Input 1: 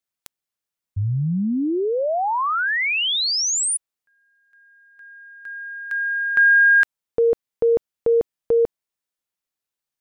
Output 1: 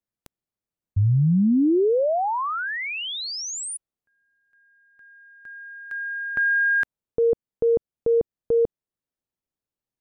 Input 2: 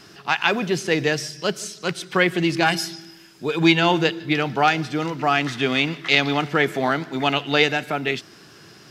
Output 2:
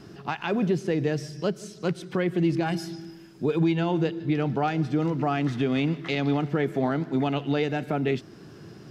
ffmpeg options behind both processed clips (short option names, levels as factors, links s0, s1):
-af "tiltshelf=f=760:g=8.5,alimiter=limit=0.211:level=0:latency=1:release=367,volume=0.841"